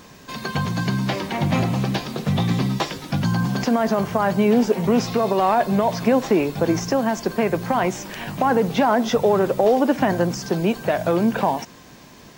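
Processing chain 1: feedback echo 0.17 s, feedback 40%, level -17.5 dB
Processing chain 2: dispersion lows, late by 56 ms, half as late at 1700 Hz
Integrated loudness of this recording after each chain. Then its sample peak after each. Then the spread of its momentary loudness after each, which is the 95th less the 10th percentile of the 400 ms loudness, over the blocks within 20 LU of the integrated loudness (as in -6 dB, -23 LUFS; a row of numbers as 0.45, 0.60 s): -21.0, -21.0 LUFS; -5.5, -5.5 dBFS; 7, 7 LU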